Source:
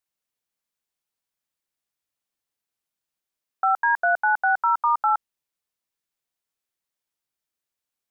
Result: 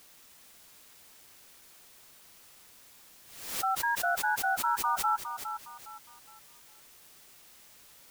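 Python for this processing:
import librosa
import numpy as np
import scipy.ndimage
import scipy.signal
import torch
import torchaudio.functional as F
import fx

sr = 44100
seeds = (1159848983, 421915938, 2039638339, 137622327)

y = fx.bin_expand(x, sr, power=2.0)
y = fx.quant_dither(y, sr, seeds[0], bits=8, dither='triangular')
y = fx.echo_feedback(y, sr, ms=411, feedback_pct=32, wet_db=-9)
y = fx.pre_swell(y, sr, db_per_s=69.0)
y = y * librosa.db_to_amplitude(-8.5)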